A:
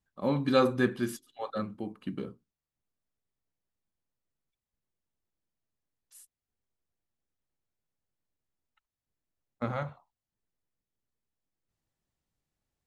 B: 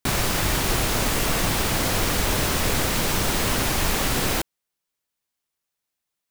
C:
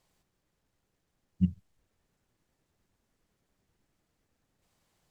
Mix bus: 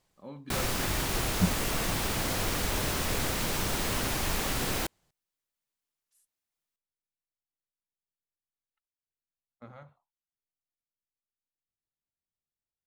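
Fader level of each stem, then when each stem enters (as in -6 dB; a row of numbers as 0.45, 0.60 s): -16.0, -7.5, 0.0 dB; 0.00, 0.45, 0.00 s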